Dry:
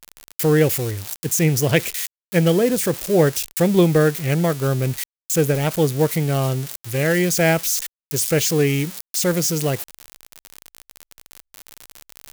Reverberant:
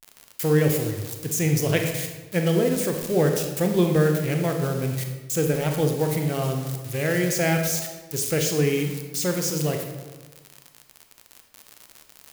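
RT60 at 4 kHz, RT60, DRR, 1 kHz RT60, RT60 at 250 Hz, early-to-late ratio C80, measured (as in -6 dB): 0.80 s, 1.3 s, 3.5 dB, 1.2 s, 1.4 s, 7.0 dB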